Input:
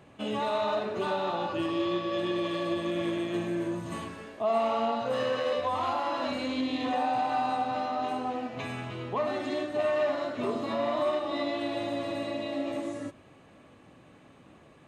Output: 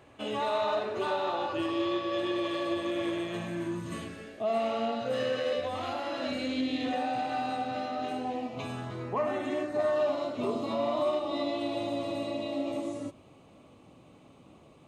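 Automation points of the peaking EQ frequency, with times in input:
peaking EQ -14 dB 0.44 oct
3.08 s 180 Hz
4.03 s 990 Hz
8.12 s 990 Hz
9.44 s 4.9 kHz
10.16 s 1.7 kHz

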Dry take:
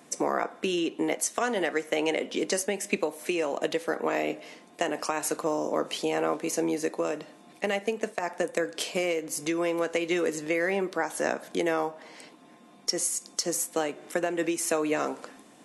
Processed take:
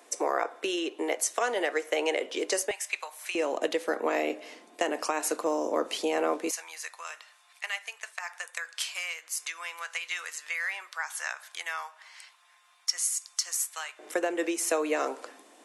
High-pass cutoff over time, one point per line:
high-pass 24 dB/octave
360 Hz
from 2.71 s 900 Hz
from 3.35 s 260 Hz
from 6.51 s 1.1 kHz
from 13.99 s 320 Hz

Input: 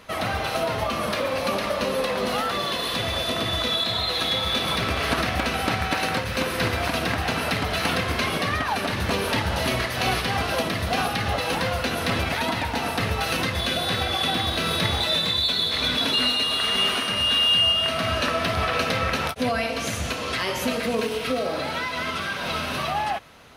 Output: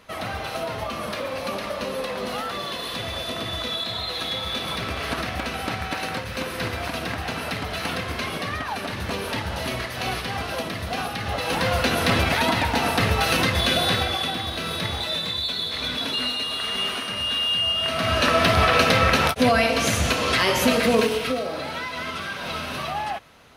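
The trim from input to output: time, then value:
11.20 s -4 dB
11.78 s +4 dB
13.87 s +4 dB
14.36 s -4 dB
17.63 s -4 dB
18.39 s +6 dB
20.99 s +6 dB
21.47 s -2.5 dB

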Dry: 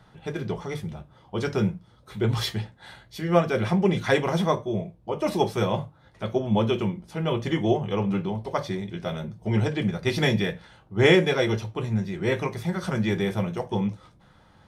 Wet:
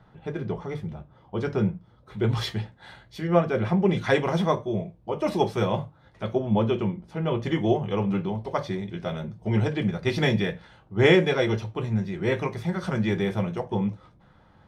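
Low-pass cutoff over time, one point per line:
low-pass 6 dB/octave
1.6 kHz
from 2.19 s 4 kHz
from 3.27 s 1.8 kHz
from 3.89 s 4.6 kHz
from 6.35 s 2 kHz
from 7.43 s 4.2 kHz
from 13.60 s 2.1 kHz

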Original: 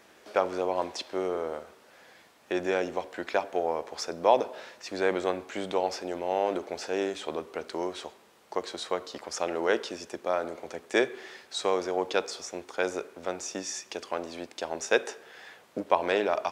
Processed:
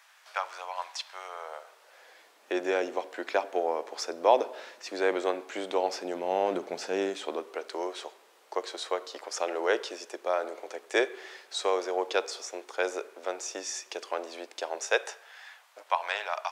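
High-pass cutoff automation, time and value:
high-pass 24 dB/octave
1.20 s 890 Hz
2.55 s 280 Hz
5.70 s 280 Hz
6.71 s 130 Hz
7.62 s 360 Hz
14.60 s 360 Hz
15.47 s 790 Hz

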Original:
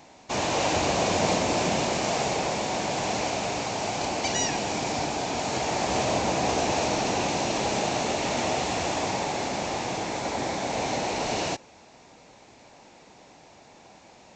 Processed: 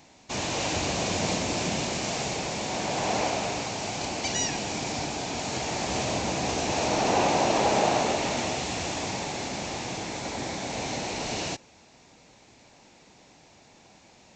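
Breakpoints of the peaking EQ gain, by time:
peaking EQ 740 Hz 2.5 oct
2.50 s -6.5 dB
3.19 s +2.5 dB
3.78 s -5 dB
6.62 s -5 dB
7.17 s +5 dB
7.90 s +5 dB
8.59 s -6 dB

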